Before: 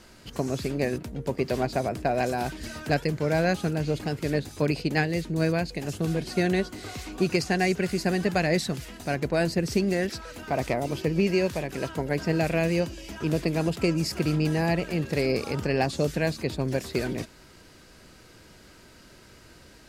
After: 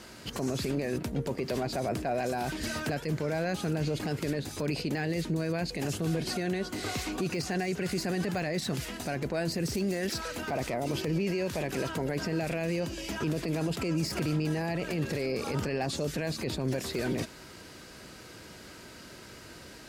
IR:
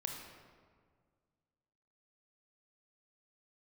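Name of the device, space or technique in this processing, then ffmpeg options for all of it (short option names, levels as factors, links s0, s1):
podcast mastering chain: -filter_complex "[0:a]asettb=1/sr,asplit=3[s0][s1][s2];[s0]atrim=end=9.524[s3];[s1]atrim=start=9.52:end=10.28,asetpts=PTS-STARTPTS,afade=t=in:d=0.004:c=qsin,afade=t=out:st=0.756:d=0.004:c=qsin,highshelf=f=4500:g=7.5[s4];[s2]atrim=start=10.276[s5];[s3][s4]acrossfade=d=0.004:c1=hsin:c2=qsin[s6];[s6][s5]acrossfade=d=0.004:c1=qsin:c2=hsin,highpass=f=98:p=1,deesser=0.75,acompressor=threshold=0.0447:ratio=3,alimiter=level_in=1.33:limit=0.0631:level=0:latency=1:release=10,volume=0.75,volume=1.78" -ar 44100 -c:a libmp3lame -b:a 112k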